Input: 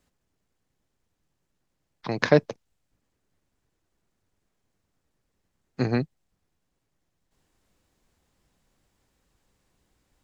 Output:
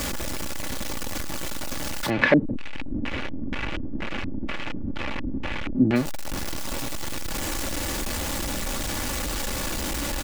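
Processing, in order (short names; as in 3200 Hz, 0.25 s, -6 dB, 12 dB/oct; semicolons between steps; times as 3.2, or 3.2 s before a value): zero-crossing step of -20.5 dBFS; comb 3.5 ms, depth 45%; 2.1–5.96 LFO low-pass square 2.1 Hz 260–2500 Hz; gain -2.5 dB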